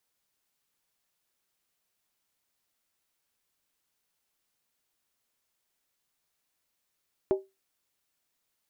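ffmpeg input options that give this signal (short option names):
-f lavfi -i "aevalsrc='0.126*pow(10,-3*t/0.22)*sin(2*PI*386*t)+0.0447*pow(10,-3*t/0.174)*sin(2*PI*615.3*t)+0.0158*pow(10,-3*t/0.151)*sin(2*PI*824.5*t)+0.00562*pow(10,-3*t/0.145)*sin(2*PI*886.3*t)+0.002*pow(10,-3*t/0.135)*sin(2*PI*1024.1*t)':d=0.63:s=44100"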